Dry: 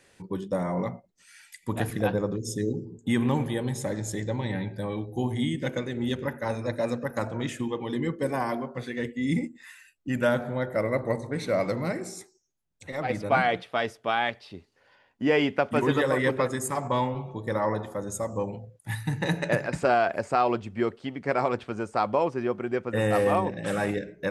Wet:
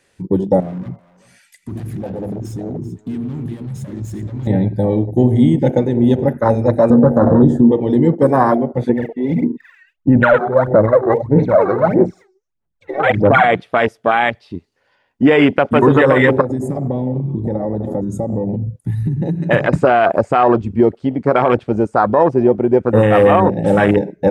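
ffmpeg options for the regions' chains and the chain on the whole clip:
-filter_complex "[0:a]asettb=1/sr,asplit=3[a][b][c];[a]atrim=end=0.604[d];[b]atrim=start=0.6:end=4.47,asetpts=PTS-STARTPTS,afade=t=in:d=0.004:c=qsin,afade=t=out:st=3.866:d=0.004:c=qsin,acompressor=threshold=-32dB:ratio=4:attack=3.2:release=140:knee=1:detection=peak,asoftclip=type=hard:threshold=-37.5dB,aecho=1:1:387:0.237,atrim=end_sample=170667[e];[c]atrim=start=4.466[f];[d][e]acrossfade=d=0.004:c1=hsin:c2=qsin[g];[g][f]acrossfade=d=0.004:c1=qsin:c2=hsin,asettb=1/sr,asplit=3[h][i][j];[h]atrim=end=6.904[k];[i]atrim=start=6.9:end=7.72,asetpts=PTS-STARTPTS,afade=t=in:d=0.004:c=qsin,afade=t=out:st=0.816:d=0.004:c=qsin,asuperstop=centerf=2400:order=8:qfactor=1.6,tiltshelf=f=1.4k:g=9.5,asplit=2[l][m];[m]adelay=13,volume=-5dB[n];[l][n]amix=inputs=2:normalize=0,atrim=end_sample=36162[o];[j]atrim=start=7.716[p];[k][o]acrossfade=d=0.004:c1=hsin:c2=qsin[q];[q][p]acrossfade=d=0.004:c1=qsin:c2=hsin,asettb=1/sr,asplit=3[r][s][t];[r]atrim=end=8.894[u];[s]atrim=start=8.89:end=13.44,asetpts=PTS-STARTPTS,afade=t=in:d=0.004:c=qsin,afade=t=out:st=4.546:d=0.004:c=qsin,lowpass=2k,aphaser=in_gain=1:out_gain=1:delay=2.7:decay=0.8:speed=1.6:type=sinusoidal,lowshelf=f=400:g=-6.5[v];[t]atrim=start=13.436[w];[u][v]acrossfade=d=0.004:c1=hsin:c2=qsin[x];[x][w]acrossfade=d=0.004:c1=qsin:c2=hsin,asettb=1/sr,asplit=3[y][z][aa];[y]atrim=end=16.414[ab];[z]atrim=start=16.41:end=19.51,asetpts=PTS-STARTPTS,afade=t=in:d=0.004:c=qsin,afade=t=out:st=3.096:d=0.004:c=qsin,equalizer=f=200:t=o:w=2.7:g=11,acompressor=threshold=-32dB:ratio=8:attack=3.2:release=140:knee=1:detection=peak[ac];[aa]atrim=start=19.506[ad];[ab][ac]acrossfade=d=0.004:c1=hsin:c2=qsin[ae];[ae][ad]acrossfade=d=0.004:c1=qsin:c2=hsin,afwtdn=0.0316,alimiter=level_in=17.5dB:limit=-1dB:release=50:level=0:latency=1,volume=-1dB"

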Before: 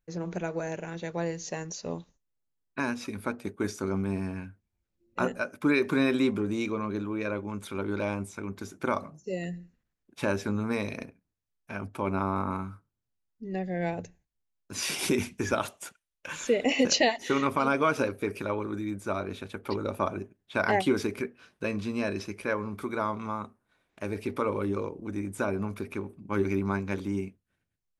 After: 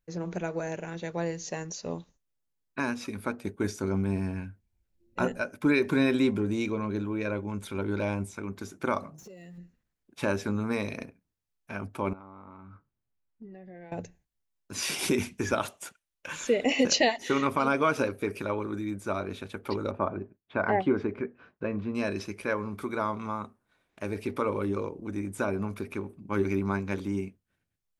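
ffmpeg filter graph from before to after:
-filter_complex "[0:a]asettb=1/sr,asplit=3[a][b][c];[a]atrim=end=3.444[d];[b]atrim=start=3.44:end=8.35,asetpts=PTS-STARTPTS,afade=t=in:d=0.004:c=qsin,afade=t=out:st=4.906:d=0.004:c=qsin,lowshelf=f=79:g=10,bandreject=f=1.2k:w=8.1[e];[c]atrim=start=8.346[f];[d][e]acrossfade=d=0.004:c1=hsin:c2=qsin[g];[g][f]acrossfade=d=0.004:c1=qsin:c2=hsin,asettb=1/sr,asplit=3[h][i][j];[h]atrim=end=9.184[k];[i]atrim=start=9.18:end=9.58,asetpts=PTS-STARTPTS,afade=t=in:d=0.004:c=qsin,afade=t=out:st=0.396:d=0.004:c=qsin,aeval=exprs='val(0)+0.5*0.00376*sgn(val(0))':c=same,acompressor=threshold=-44dB:ratio=20:attack=3.2:release=140:knee=1:detection=peak[l];[j]atrim=start=9.576[m];[k][l]acrossfade=d=0.004:c1=hsin:c2=qsin[n];[n][m]acrossfade=d=0.004:c1=qsin:c2=hsin,asettb=1/sr,asplit=3[o][p][q];[o]atrim=end=12.134[r];[p]atrim=start=12.13:end=13.92,asetpts=PTS-STARTPTS,afade=t=in:d=0.004:c=qsin,afade=t=out:st=1.786:d=0.004:c=qsin,lowpass=2.6k,acompressor=threshold=-42dB:ratio=16:attack=3.2:release=140:knee=1:detection=peak,asplit=2[s][t];[t]adelay=14,volume=-11dB[u];[s][u]amix=inputs=2:normalize=0,atrim=end_sample=78939[v];[q]atrim=start=13.916[w];[r][v]acrossfade=d=0.004:c1=hsin:c2=qsin[x];[x][w]acrossfade=d=0.004:c1=qsin:c2=hsin,asettb=1/sr,asplit=3[y][z][aa];[y]atrim=end=19.914[ab];[z]atrim=start=19.91:end=21.95,asetpts=PTS-STARTPTS,afade=t=in:d=0.004:c=qsin,afade=t=out:st=2.036:d=0.004:c=qsin,lowpass=1.6k,agate=range=-33dB:threshold=-59dB:ratio=3:release=100:detection=peak,acompressor=mode=upward:threshold=-46dB:ratio=2.5:attack=3.2:release=140:knee=2.83:detection=peak[ac];[aa]atrim=start=21.946[ad];[ab][ac]acrossfade=d=0.004:c1=hsin:c2=qsin[ae];[ae][ad]acrossfade=d=0.004:c1=qsin:c2=hsin"

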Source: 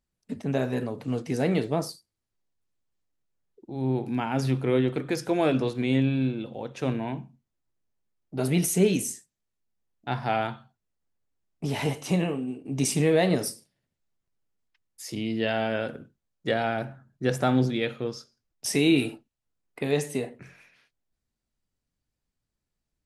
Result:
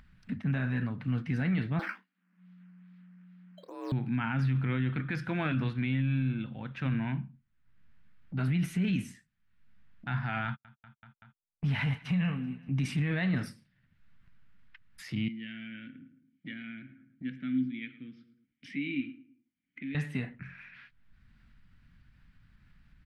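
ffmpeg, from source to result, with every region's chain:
-filter_complex "[0:a]asettb=1/sr,asplit=3[a][b][c];[a]atrim=end=1.794[d];[b]atrim=start=1.79:end=3.92,asetpts=PTS-STARTPTS,afade=t=in:d=0.004:c=qsin,afade=t=out:st=2.126:d=0.004:c=qsin,acrusher=samples=9:mix=1:aa=0.000001:lfo=1:lforange=9:lforate=2.4,afreqshift=180,asplit=2[e][f];[f]adelay=27,volume=-11dB[g];[e][g]amix=inputs=2:normalize=0,atrim=end_sample=93933[h];[c]atrim=start=3.916[i];[d][h]acrossfade=d=0.004:c1=hsin:c2=qsin[j];[j][i]acrossfade=d=0.004:c1=qsin:c2=hsin,asettb=1/sr,asplit=3[k][l][m];[k]atrim=end=10.454[n];[l]atrim=start=10.45:end=12.69,asetpts=PTS-STARTPTS,afade=t=in:d=0.004:c=qsin,afade=t=out:st=2.236:d=0.004:c=qsin,agate=range=-49dB:threshold=-40dB:ratio=16:release=100:detection=peak,equalizer=f=330:w=5.6:g=-14.5,aecho=1:1:191|382|573|764:0.075|0.0397|0.0211|0.0112,atrim=end_sample=98784[o];[m]atrim=start=12.686[p];[n][o]acrossfade=d=0.004:c1=hsin:c2=qsin[q];[q][p]acrossfade=d=0.004:c1=qsin:c2=hsin,asettb=1/sr,asplit=3[r][s][t];[r]atrim=end=15.284[u];[s]atrim=start=15.28:end=19.95,asetpts=PTS-STARTPTS,afade=t=in:d=0.004:c=qsin,afade=t=out:st=4.666:d=0.004:c=qsin,asplit=3[v][w][x];[v]bandpass=f=270:t=q:w=8,volume=0dB[y];[w]bandpass=f=2.29k:t=q:w=8,volume=-6dB[z];[x]bandpass=f=3.01k:t=q:w=8,volume=-9dB[aa];[y][z][aa]amix=inputs=3:normalize=0,asplit=2[ab][ac];[ac]adelay=109,lowpass=f=1.8k:p=1,volume=-14.5dB,asplit=2[ad][ae];[ae]adelay=109,lowpass=f=1.8k:p=1,volume=0.31,asplit=2[af][ag];[ag]adelay=109,lowpass=f=1.8k:p=1,volume=0.31[ah];[ab][ad][af][ah]amix=inputs=4:normalize=0,atrim=end_sample=205947[ai];[t]atrim=start=19.946[aj];[u][ai]acrossfade=d=0.004:c1=hsin:c2=qsin[ak];[ak][aj]acrossfade=d=0.004:c1=qsin:c2=hsin,firequalizer=gain_entry='entry(190,0);entry(410,-21);entry(1500,2);entry(6600,-26)':delay=0.05:min_phase=1,alimiter=level_in=2dB:limit=-24dB:level=0:latency=1:release=17,volume=-2dB,acompressor=mode=upward:threshold=-44dB:ratio=2.5,volume=3.5dB"

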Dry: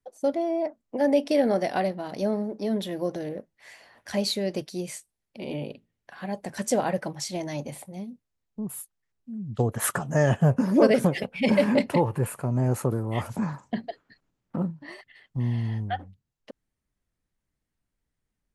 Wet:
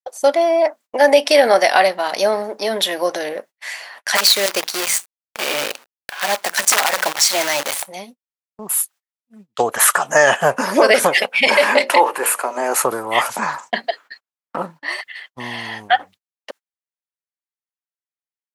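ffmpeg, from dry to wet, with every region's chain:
-filter_complex "[0:a]asettb=1/sr,asplit=3[a][b][c];[a]atrim=end=4.154[d];[b]atrim=start=4.15:end=7.87,asetpts=PTS-STARTPTS,afade=t=in:d=0.004:c=qsin,afade=t=out:st=3.716:d=0.004:c=qsin,bandreject=f=60:t=h:w=6,bandreject=f=120:t=h:w=6,bandreject=f=180:t=h:w=6,bandreject=f=240:t=h:w=6,bandreject=f=300:t=h:w=6,aeval=exprs='(mod(7.94*val(0)+1,2)-1)/7.94':c=same,acrusher=bits=7:dc=4:mix=0:aa=0.000001[e];[c]atrim=start=7.866[f];[d][e]acrossfade=d=0.004:c1=hsin:c2=qsin[g];[g][f]acrossfade=d=0.004:c1=qsin:c2=hsin,asettb=1/sr,asplit=3[h][i][j];[h]atrim=end=11.474[k];[i]atrim=start=11.47:end=12.75,asetpts=PTS-STARTPTS,afade=t=in:d=0.004:c=qsin,afade=t=out:st=1.276:d=0.004:c=qsin,highpass=f=250:w=0.5412,highpass=f=250:w=1.3066,bandreject=f=60:t=h:w=6,bandreject=f=120:t=h:w=6,bandreject=f=180:t=h:w=6,bandreject=f=240:t=h:w=6,bandreject=f=300:t=h:w=6,bandreject=f=360:t=h:w=6,bandreject=f=420:t=h:w=6,bandreject=f=480:t=h:w=6,bandreject=f=540:t=h:w=6,bandreject=f=600:t=h:w=6[l];[j]atrim=start=12.746[m];[k][l]acrossfade=d=0.004:c1=hsin:c2=qsin[n];[n][m]acrossfade=d=0.004:c1=qsin:c2=hsin,highpass=900,agate=range=-33dB:threshold=-58dB:ratio=16:detection=peak,alimiter=level_in=21dB:limit=-1dB:release=50:level=0:latency=1,volume=-1dB"

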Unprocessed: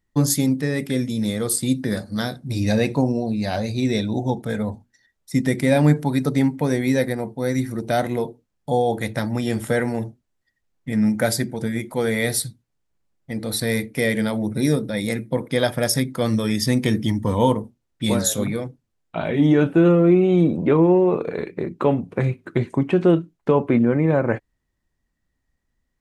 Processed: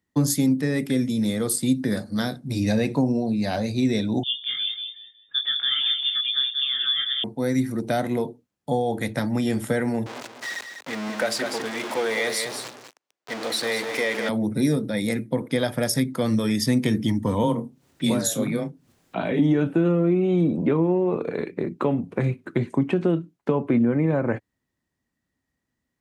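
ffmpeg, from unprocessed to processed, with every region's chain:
-filter_complex "[0:a]asettb=1/sr,asplit=3[a][b][c];[a]atrim=end=4.234[d];[b]atrim=start=4.23:end=7.24,asetpts=PTS-STARTPTS,afade=t=in:d=0.004:c=qsin,afade=t=out:st=3.006:d=0.004:c=qsin,flanger=delay=19:depth=5.9:speed=1.5,asplit=2[e][f];[f]adelay=184,lowpass=f=1.1k:p=1,volume=-6dB,asplit=2[g][h];[h]adelay=184,lowpass=f=1.1k:p=1,volume=0.27,asplit=2[i][j];[j]adelay=184,lowpass=f=1.1k:p=1,volume=0.27[k];[e][g][i][k]amix=inputs=4:normalize=0,atrim=end_sample=132741,lowpass=f=3.1k:t=q:w=0.5098,lowpass=f=3.1k:t=q:w=0.6013,lowpass=f=3.1k:t=q:w=0.9,lowpass=f=3.1k:t=q:w=2.563,afreqshift=-3700[l];[c]atrim=start=7.236[m];[d][l]acrossfade=d=0.004:c1=hsin:c2=qsin[n];[n][m]acrossfade=d=0.004:c1=qsin:c2=hsin,asettb=1/sr,asplit=3[o][p][q];[o]atrim=end=10.064[r];[p]atrim=start=10.06:end=14.29,asetpts=PTS-STARTPTS,afade=t=in:d=0.004:c=qsin,afade=t=out:st=4.226:d=0.004:c=qsin,aeval=exprs='val(0)+0.5*0.0794*sgn(val(0))':c=same,acrossover=split=380 7100:gain=0.0708 1 0.2[s][t][u];[s][t][u]amix=inputs=3:normalize=0,aecho=1:1:198:0.398,atrim=end_sample=186543[v];[q]atrim=start=14.286[w];[r][v]acrossfade=d=0.004:c1=hsin:c2=qsin[x];[x][w]acrossfade=d=0.004:c1=qsin:c2=hsin,asettb=1/sr,asplit=3[y][z][aa];[y]atrim=end=17.434[ab];[z]atrim=start=17.43:end=19.39,asetpts=PTS-STARTPTS,afade=t=in:d=0.004:c=qsin,afade=t=out:st=1.956:d=0.004:c=qsin,acompressor=mode=upward:threshold=-34dB:ratio=2.5:attack=3.2:release=140:knee=2.83:detection=peak,afreqshift=17,asplit=2[ac][ad];[ad]adelay=30,volume=-12dB[ae];[ac][ae]amix=inputs=2:normalize=0,atrim=end_sample=86436[af];[aa]atrim=start=19.386[ag];[ab][af]acrossfade=d=0.004:c1=hsin:c2=qsin[ah];[ah][ag]acrossfade=d=0.004:c1=qsin:c2=hsin,highpass=98,acrossover=split=140[ai][aj];[aj]acompressor=threshold=-20dB:ratio=3[ak];[ai][ak]amix=inputs=2:normalize=0,equalizer=f=260:w=2.8:g=3.5,volume=-1dB"

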